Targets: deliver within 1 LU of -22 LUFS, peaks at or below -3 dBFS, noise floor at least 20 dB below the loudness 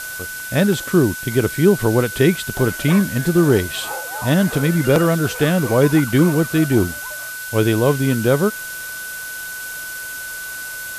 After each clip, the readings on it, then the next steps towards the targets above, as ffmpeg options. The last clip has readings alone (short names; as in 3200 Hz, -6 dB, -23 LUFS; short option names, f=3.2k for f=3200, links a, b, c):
steady tone 1500 Hz; tone level -29 dBFS; noise floor -30 dBFS; noise floor target -39 dBFS; loudness -18.5 LUFS; peak -2.0 dBFS; loudness target -22.0 LUFS
-> -af "bandreject=f=1.5k:w=30"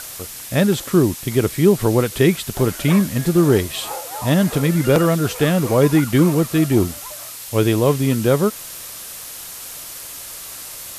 steady tone none; noise floor -34 dBFS; noise floor target -38 dBFS
-> -af "afftdn=nr=6:nf=-34"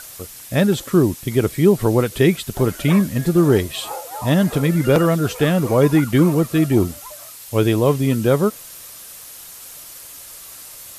noise floor -39 dBFS; loudness -18.0 LUFS; peak -2.5 dBFS; loudness target -22.0 LUFS
-> -af "volume=-4dB"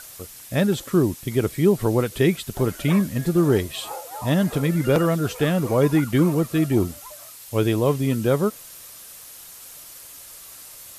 loudness -22.0 LUFS; peak -6.5 dBFS; noise floor -43 dBFS